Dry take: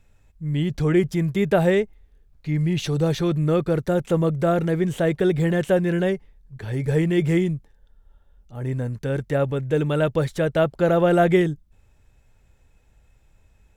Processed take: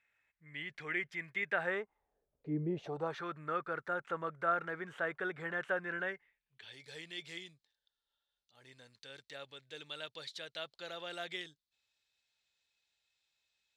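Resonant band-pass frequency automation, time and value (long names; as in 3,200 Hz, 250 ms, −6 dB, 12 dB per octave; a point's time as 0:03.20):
resonant band-pass, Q 3.4
0:01.47 2,000 Hz
0:02.60 360 Hz
0:03.19 1,400 Hz
0:06.01 1,400 Hz
0:06.80 4,100 Hz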